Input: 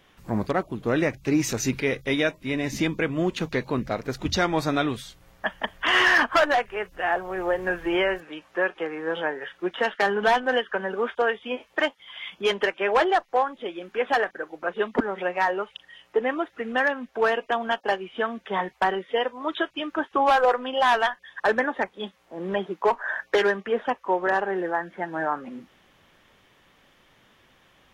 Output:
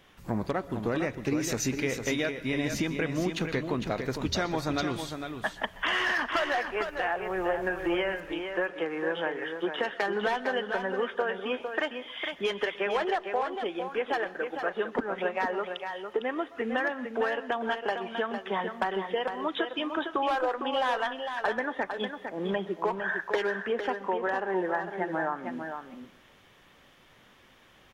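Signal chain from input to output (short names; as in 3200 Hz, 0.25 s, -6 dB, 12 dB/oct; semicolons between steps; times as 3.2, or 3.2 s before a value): compressor, threshold -26 dBFS, peak gain reduction 10.5 dB; echo 0.455 s -7 dB; on a send at -17.5 dB: reverb RT60 0.50 s, pre-delay 0.117 s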